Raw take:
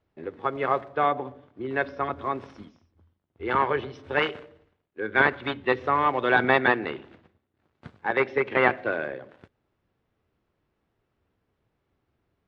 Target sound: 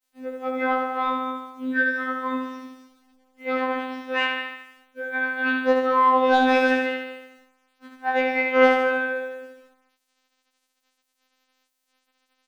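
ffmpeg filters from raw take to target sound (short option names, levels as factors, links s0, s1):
-filter_complex "[0:a]equalizer=f=130:w=6.5:g=-7,asplit=2[s0][s1];[s1]aecho=0:1:209:0.282[s2];[s0][s2]amix=inputs=2:normalize=0,asplit=3[s3][s4][s5];[s3]afade=t=out:st=4.4:d=0.02[s6];[s4]acompressor=threshold=0.0398:ratio=12,afade=t=in:st=4.4:d=0.02,afade=t=out:st=5.38:d=0.02[s7];[s5]afade=t=in:st=5.38:d=0.02[s8];[s6][s7][s8]amix=inputs=3:normalize=0,volume=2.99,asoftclip=hard,volume=0.335,asplit=2[s9][s10];[s10]aecho=0:1:73|146|219|292|365|438|511:0.668|0.361|0.195|0.105|0.0568|0.0307|0.0166[s11];[s9][s11]amix=inputs=2:normalize=0,acontrast=87,adynamicequalizer=threshold=0.0158:dfrequency=1500:dqfactor=6.1:tfrequency=1500:tqfactor=6.1:attack=5:release=100:ratio=0.375:range=2:mode=boostabove:tftype=bell,afftfilt=real='hypot(re,im)*cos(PI*b)':imag='0':win_size=2048:overlap=0.75,acrusher=bits=8:mix=0:aa=0.000001,afftfilt=real='re*3.46*eq(mod(b,12),0)':imag='im*3.46*eq(mod(b,12),0)':win_size=2048:overlap=0.75,volume=0.531"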